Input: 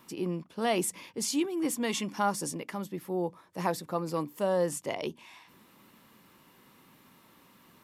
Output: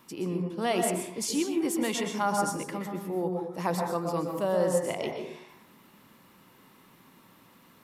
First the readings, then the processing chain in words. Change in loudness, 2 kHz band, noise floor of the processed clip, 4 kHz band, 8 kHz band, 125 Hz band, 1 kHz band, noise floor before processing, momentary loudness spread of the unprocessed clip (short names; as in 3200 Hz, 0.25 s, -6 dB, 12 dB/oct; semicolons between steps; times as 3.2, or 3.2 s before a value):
+2.5 dB, +1.5 dB, -58 dBFS, +1.0 dB, +1.0 dB, +3.5 dB, +2.5 dB, -61 dBFS, 8 LU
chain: plate-style reverb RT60 0.71 s, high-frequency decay 0.4×, pre-delay 0.11 s, DRR 2.5 dB